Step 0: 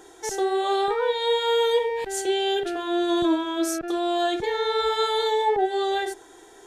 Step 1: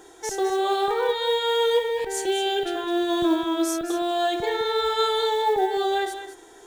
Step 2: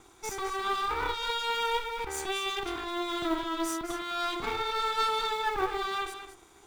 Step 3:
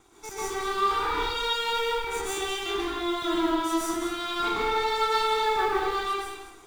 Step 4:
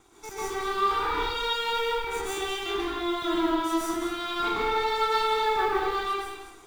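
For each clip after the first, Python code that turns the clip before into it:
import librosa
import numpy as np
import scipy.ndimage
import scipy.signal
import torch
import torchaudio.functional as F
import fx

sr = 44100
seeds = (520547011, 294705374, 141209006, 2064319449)

y1 = fx.quant_float(x, sr, bits=4)
y1 = y1 + 10.0 ** (-10.0 / 20.0) * np.pad(y1, (int(209 * sr / 1000.0), 0))[:len(y1)]
y2 = fx.lower_of_two(y1, sr, delay_ms=0.83)
y2 = fx.dynamic_eq(y2, sr, hz=1500.0, q=1.1, threshold_db=-42.0, ratio=4.0, max_db=4)
y2 = F.gain(torch.from_numpy(y2), -6.0).numpy()
y3 = fx.rev_plate(y2, sr, seeds[0], rt60_s=0.77, hf_ratio=0.85, predelay_ms=110, drr_db=-6.0)
y3 = F.gain(torch.from_numpy(y3), -3.5).numpy()
y4 = fx.dynamic_eq(y3, sr, hz=7800.0, q=0.78, threshold_db=-50.0, ratio=4.0, max_db=-4)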